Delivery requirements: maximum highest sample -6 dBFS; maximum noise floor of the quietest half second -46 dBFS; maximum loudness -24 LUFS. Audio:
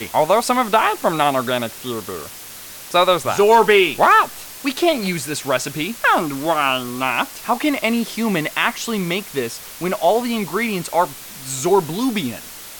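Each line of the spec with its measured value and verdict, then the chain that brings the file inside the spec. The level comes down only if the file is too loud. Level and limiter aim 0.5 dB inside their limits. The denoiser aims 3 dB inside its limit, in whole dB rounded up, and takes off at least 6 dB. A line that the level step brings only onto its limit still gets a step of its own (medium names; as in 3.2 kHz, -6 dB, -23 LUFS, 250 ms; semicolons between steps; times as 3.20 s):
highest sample -3.0 dBFS: fail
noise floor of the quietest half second -36 dBFS: fail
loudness -18.5 LUFS: fail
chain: noise reduction 7 dB, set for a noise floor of -36 dBFS; trim -6 dB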